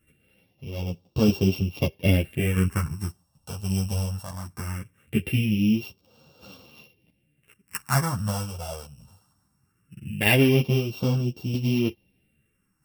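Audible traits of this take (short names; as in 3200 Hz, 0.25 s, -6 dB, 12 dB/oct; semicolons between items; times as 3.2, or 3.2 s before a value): a buzz of ramps at a fixed pitch in blocks of 16 samples; phasing stages 4, 0.2 Hz, lowest notch 330–1900 Hz; tremolo saw down 0.78 Hz, depth 50%; a shimmering, thickened sound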